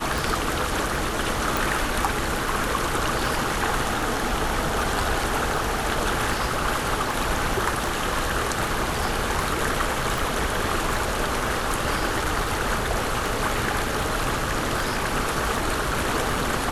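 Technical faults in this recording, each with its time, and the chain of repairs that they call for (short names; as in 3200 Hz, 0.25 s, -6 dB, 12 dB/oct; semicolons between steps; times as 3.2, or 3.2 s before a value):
tick 78 rpm
1.57 pop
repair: de-click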